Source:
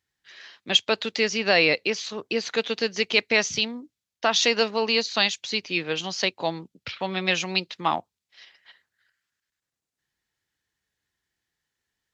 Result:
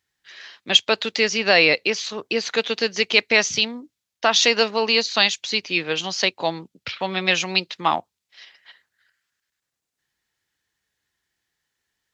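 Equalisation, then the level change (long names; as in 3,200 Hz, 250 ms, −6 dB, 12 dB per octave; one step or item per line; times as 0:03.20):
low-shelf EQ 390 Hz −4 dB
+4.5 dB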